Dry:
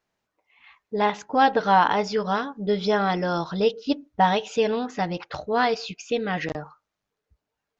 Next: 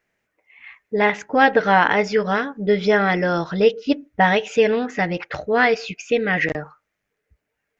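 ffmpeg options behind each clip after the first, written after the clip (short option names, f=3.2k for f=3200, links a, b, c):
-af "equalizer=f=500:t=o:w=1:g=3,equalizer=f=1k:t=o:w=1:g=-7,equalizer=f=2k:t=o:w=1:g=11,equalizer=f=4k:t=o:w=1:g=-7,volume=4dB"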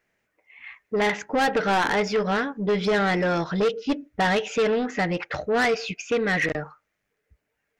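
-af "asoftclip=type=tanh:threshold=-17.5dB"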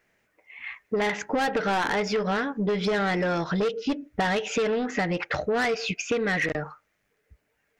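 -af "acompressor=threshold=-28dB:ratio=6,volume=4.5dB"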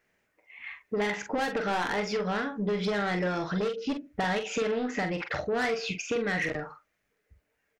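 -filter_complex "[0:a]asplit=2[a][b];[b]adelay=44,volume=-7dB[c];[a][c]amix=inputs=2:normalize=0,volume=-4.5dB"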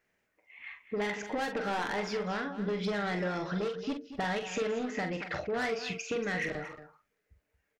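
-af "aecho=1:1:230:0.237,volume=-4dB"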